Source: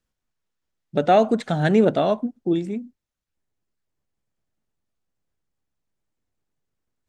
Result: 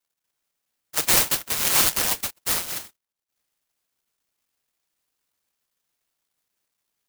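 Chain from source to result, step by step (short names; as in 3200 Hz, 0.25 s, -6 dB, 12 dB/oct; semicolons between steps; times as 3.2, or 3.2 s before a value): decimation with a swept rate 20×, swing 100% 2.5 Hz; inverted band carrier 3100 Hz; clock jitter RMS 0.15 ms; gain -3 dB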